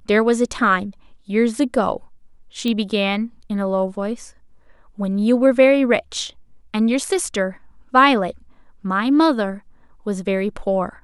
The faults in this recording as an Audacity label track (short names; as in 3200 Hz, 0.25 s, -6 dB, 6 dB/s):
2.680000	2.680000	pop -12 dBFS